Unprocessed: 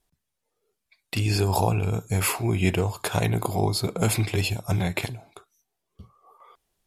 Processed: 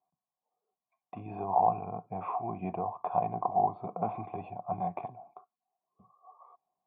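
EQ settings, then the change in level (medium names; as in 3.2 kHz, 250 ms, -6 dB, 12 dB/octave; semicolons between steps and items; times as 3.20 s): cascade formant filter a; high-pass 140 Hz 12 dB/octave; peaking EQ 180 Hz +10.5 dB 1.5 oct; +6.5 dB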